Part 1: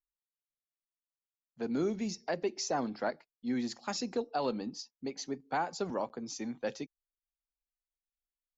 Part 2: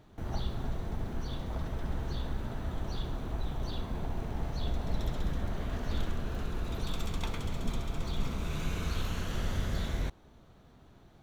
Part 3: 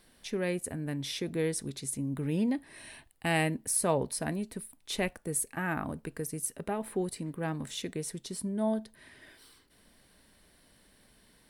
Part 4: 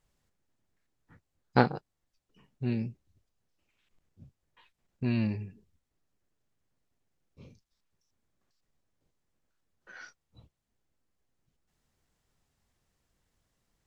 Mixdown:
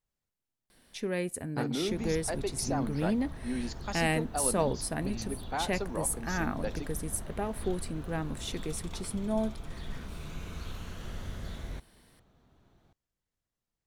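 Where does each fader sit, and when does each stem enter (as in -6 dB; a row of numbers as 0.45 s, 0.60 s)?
-1.5 dB, -7.0 dB, -0.5 dB, -13.0 dB; 0.00 s, 1.70 s, 0.70 s, 0.00 s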